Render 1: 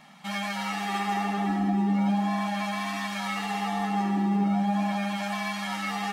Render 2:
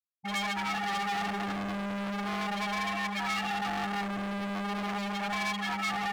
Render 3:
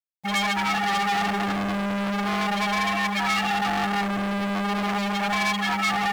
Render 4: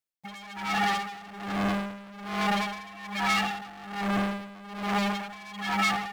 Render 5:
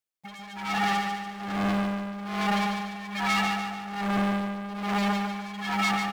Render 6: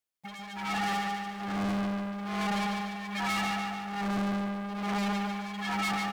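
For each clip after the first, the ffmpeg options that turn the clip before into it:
-af "afftfilt=real='re*gte(hypot(re,im),0.0631)':imag='im*gte(hypot(re,im),0.0631)':win_size=1024:overlap=0.75,volume=56.2,asoftclip=hard,volume=0.0178,tiltshelf=f=740:g=-4.5,volume=1.68"
-af "acrusher=bits=9:mix=0:aa=0.000001,volume=2.51"
-af "alimiter=limit=0.0841:level=0:latency=1:release=140,aeval=exprs='val(0)*pow(10,-20*(0.5-0.5*cos(2*PI*1.2*n/s))/20)':c=same,volume=1.68"
-af "aecho=1:1:145|290|435|580|725|870:0.501|0.236|0.111|0.052|0.0245|0.0115,volume=0.891"
-af "asoftclip=type=tanh:threshold=0.0422"

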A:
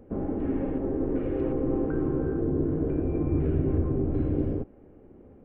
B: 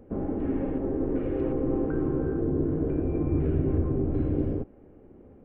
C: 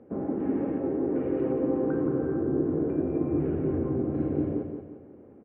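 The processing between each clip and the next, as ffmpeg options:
-af anull
-af "highpass=150,lowpass=2400,aecho=1:1:177|354|531|708|885:0.473|0.203|0.0875|0.0376|0.0162"

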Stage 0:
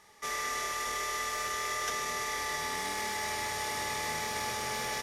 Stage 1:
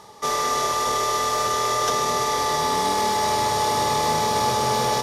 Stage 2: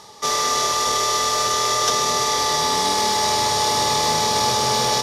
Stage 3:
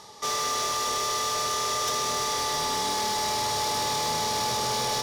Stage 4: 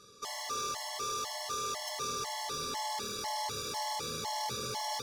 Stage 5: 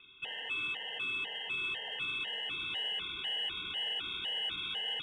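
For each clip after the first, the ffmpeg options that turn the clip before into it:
-af "equalizer=f=125:t=o:w=1:g=10,equalizer=f=250:t=o:w=1:g=5,equalizer=f=500:t=o:w=1:g=7,equalizer=f=1000:t=o:w=1:g=9,equalizer=f=2000:t=o:w=1:g=-8,equalizer=f=4000:t=o:w=1:g=6,areverse,acompressor=mode=upward:threshold=0.0126:ratio=2.5,areverse,volume=2.24"
-af "equalizer=f=4900:w=0.67:g=8"
-af "asoftclip=type=tanh:threshold=0.1,volume=0.668"
-af "afftfilt=real='re*gt(sin(2*PI*2*pts/sr)*(1-2*mod(floor(b*sr/1024/560),2)),0)':imag='im*gt(sin(2*PI*2*pts/sr)*(1-2*mod(floor(b*sr/1024/560),2)),0)':win_size=1024:overlap=0.75,volume=0.473"
-filter_complex "[0:a]lowpass=f=3200:t=q:w=0.5098,lowpass=f=3200:t=q:w=0.6013,lowpass=f=3200:t=q:w=0.9,lowpass=f=3200:t=q:w=2.563,afreqshift=-3800,asplit=2[s0][s1];[s1]asoftclip=type=tanh:threshold=0.0141,volume=0.251[s2];[s0][s2]amix=inputs=2:normalize=0"

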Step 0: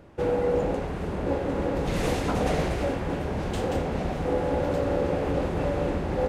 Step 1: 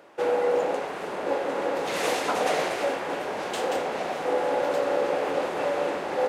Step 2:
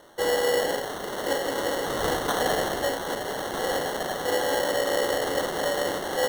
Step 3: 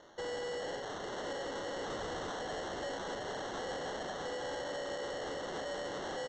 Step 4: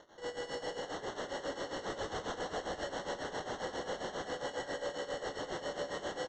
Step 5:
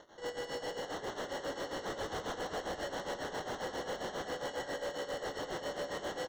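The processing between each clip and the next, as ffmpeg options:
-af "highpass=530,volume=1.78"
-af "acrusher=samples=18:mix=1:aa=0.000001"
-af "alimiter=limit=0.0794:level=0:latency=1:release=124,aresample=16000,asoftclip=type=tanh:threshold=0.0316,aresample=44100,volume=0.531"
-filter_complex "[0:a]tremolo=f=7.4:d=0.82,asplit=2[s0][s1];[s1]aecho=0:1:154.5|253.6:0.447|0.631[s2];[s0][s2]amix=inputs=2:normalize=0,volume=1.19"
-filter_complex "[0:a]asplit=2[s0][s1];[s1]acrusher=bits=5:mix=0:aa=0.000001,volume=0.299[s2];[s0][s2]amix=inputs=2:normalize=0,asoftclip=type=tanh:threshold=0.02,volume=1.19"

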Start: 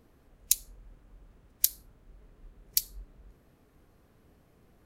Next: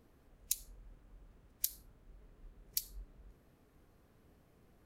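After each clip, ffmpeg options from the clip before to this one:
-af "alimiter=limit=0.376:level=0:latency=1:release=94,volume=0.631"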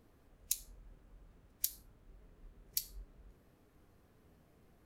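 -af "flanger=delay=9.7:depth=3.5:regen=74:speed=0.54:shape=sinusoidal,volume=1.68"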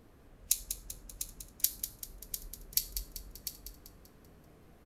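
-filter_complex "[0:a]asplit=2[s0][s1];[s1]aecho=0:1:698:0.316[s2];[s0][s2]amix=inputs=2:normalize=0,aresample=32000,aresample=44100,asplit=2[s3][s4];[s4]aecho=0:1:194|388|582|776|970:0.355|0.17|0.0817|0.0392|0.0188[s5];[s3][s5]amix=inputs=2:normalize=0,volume=2.11"

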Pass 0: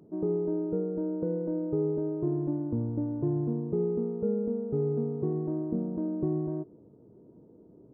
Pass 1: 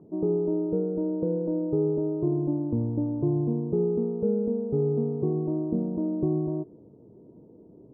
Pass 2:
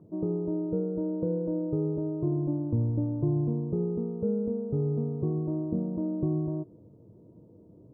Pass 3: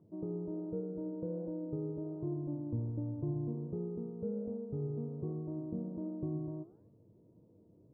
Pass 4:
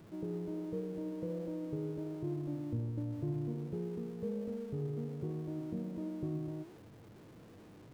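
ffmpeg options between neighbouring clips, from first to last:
-af "lowpass=f=1100:w=0.5412,lowpass=f=1100:w=1.3066,volume=1.5"
-af "equalizer=f=100:t=o:w=0.33:g=8,equalizer=f=250:t=o:w=0.33:g=-6,equalizer=f=400:t=o:w=0.33:g=-8,equalizer=f=800:t=o:w=0.33:g=-7"
-af "flanger=delay=8.6:depth=8.6:regen=86:speed=1.3:shape=sinusoidal,volume=0.562"
-af "aeval=exprs='val(0)+0.5*0.00266*sgn(val(0))':c=same,volume=0.891"

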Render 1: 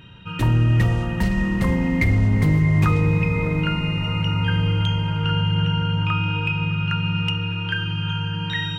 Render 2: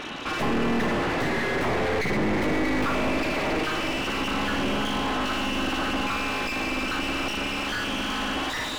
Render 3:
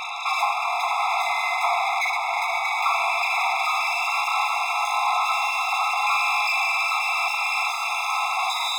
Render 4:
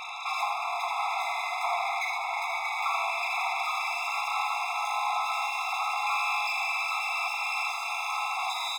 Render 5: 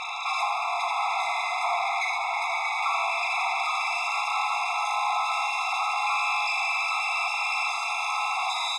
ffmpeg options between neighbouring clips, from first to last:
-filter_complex "[0:a]aeval=exprs='abs(val(0))':c=same,asplit=2[s0][s1];[s1]highpass=f=720:p=1,volume=79.4,asoftclip=type=tanh:threshold=0.355[s2];[s0][s2]amix=inputs=2:normalize=0,lowpass=f=1200:p=1,volume=0.501,volume=0.422"
-af "afftfilt=real='re*eq(mod(floor(b*sr/1024/680),2),1)':imag='im*eq(mod(floor(b*sr/1024/680),2),1)':win_size=1024:overlap=0.75,volume=2.66"
-af "aecho=1:1:83:0.422,volume=0.422"
-filter_complex "[0:a]asplit=2[s0][s1];[s1]alimiter=level_in=1.33:limit=0.0631:level=0:latency=1:release=31,volume=0.75,volume=1[s2];[s0][s2]amix=inputs=2:normalize=0,lowpass=f=10000:w=0.5412,lowpass=f=10000:w=1.3066,volume=0.891"

